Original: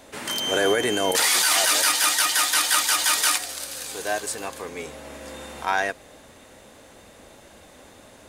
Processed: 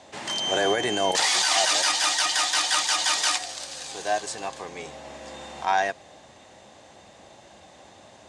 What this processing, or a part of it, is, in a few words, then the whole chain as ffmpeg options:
car door speaker: -af "highpass=91,equalizer=frequency=260:width_type=q:width=4:gain=-7,equalizer=frequency=460:width_type=q:width=4:gain=-6,equalizer=frequency=760:width_type=q:width=4:gain=5,equalizer=frequency=1400:width_type=q:width=4:gain=-6,equalizer=frequency=2300:width_type=q:width=4:gain=-3,lowpass=frequency=7500:width=0.5412,lowpass=frequency=7500:width=1.3066"

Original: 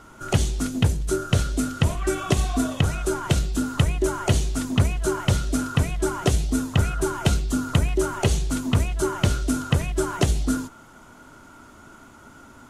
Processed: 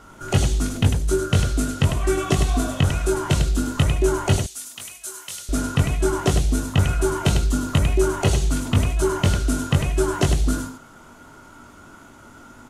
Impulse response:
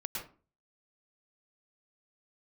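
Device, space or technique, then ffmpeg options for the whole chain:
slapback doubling: -filter_complex "[0:a]asettb=1/sr,asplit=3[link_01][link_02][link_03];[link_01]atrim=end=4.364[link_04];[link_02]atrim=start=4.36:end=5.49,asetpts=PTS-STARTPTS,afade=type=in:duration=0.004:curve=qsin,afade=type=out:start_time=1.126:duration=0.004:curve=qsin,aderivative[link_05];[link_03]atrim=start=5.486[link_06];[link_04][link_05]acrossfade=duration=0.004:curve1=hsin:curve2=qsin[link_07];[link_07][link_06]acrossfade=duration=0.004:curve1=qsin:curve2=hsin,asplit=3[link_08][link_09][link_10];[link_09]adelay=21,volume=-4.5dB[link_11];[link_10]adelay=100,volume=-6dB[link_12];[link_08][link_11][link_12]amix=inputs=3:normalize=0"

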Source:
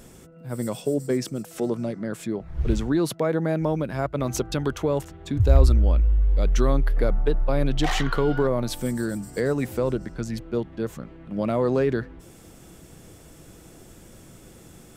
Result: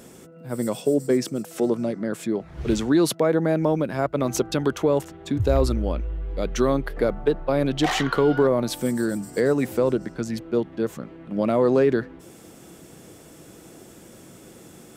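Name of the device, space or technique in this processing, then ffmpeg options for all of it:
filter by subtraction: -filter_complex "[0:a]asettb=1/sr,asplit=3[link_01][link_02][link_03];[link_01]atrim=end=2.354[link_04];[link_02]atrim=start=2.35:end=3.15,asetpts=PTS-STARTPTS,afade=type=in:duration=0.004:curve=qsin,afade=type=out:start_time=0.796:duration=0.004:curve=qsin,equalizer=frequency=6300:width=0.31:gain=5[link_05];[link_03]atrim=start=3.146[link_06];[link_04][link_05]acrossfade=duration=0.004:curve1=hsin:curve2=qsin[link_07];[link_07][link_06]acrossfade=duration=0.004:curve1=qsin:curve2=hsin,asplit=2[link_08][link_09];[link_09]lowpass=290,volume=-1[link_10];[link_08][link_10]amix=inputs=2:normalize=0,volume=2dB"

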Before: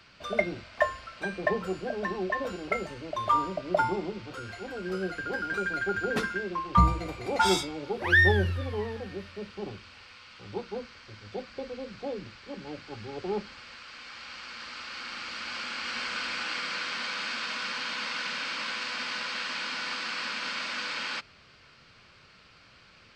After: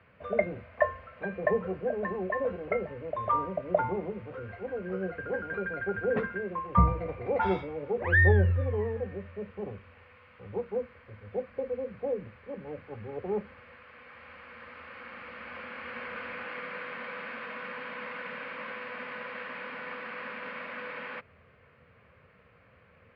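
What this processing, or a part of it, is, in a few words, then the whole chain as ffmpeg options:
bass cabinet: -af "highpass=66,equalizer=frequency=82:width_type=q:width=4:gain=8,equalizer=frequency=330:width_type=q:width=4:gain=-9,equalizer=frequency=490:width_type=q:width=4:gain=8,equalizer=frequency=860:width_type=q:width=4:gain=-4,equalizer=frequency=1400:width_type=q:width=4:gain=-7,lowpass=frequency=2000:width=0.5412,lowpass=frequency=2000:width=1.3066"

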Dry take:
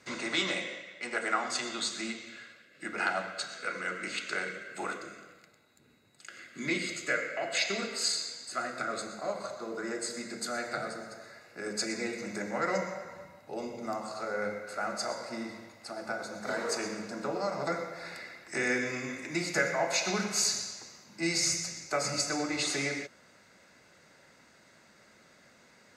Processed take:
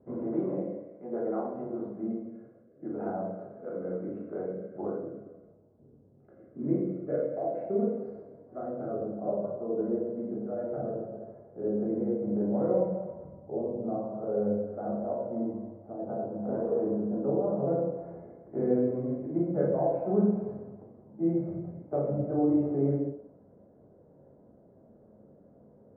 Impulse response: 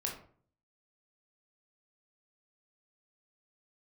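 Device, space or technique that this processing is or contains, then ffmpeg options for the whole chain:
next room: -filter_complex "[0:a]lowpass=frequency=620:width=0.5412,lowpass=frequency=620:width=1.3066[link_01];[1:a]atrim=start_sample=2205[link_02];[link_01][link_02]afir=irnorm=-1:irlink=0,volume=5.5dB"

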